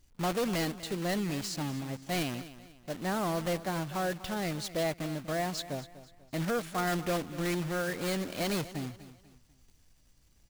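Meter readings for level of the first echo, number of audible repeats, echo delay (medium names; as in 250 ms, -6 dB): -15.5 dB, 3, 245 ms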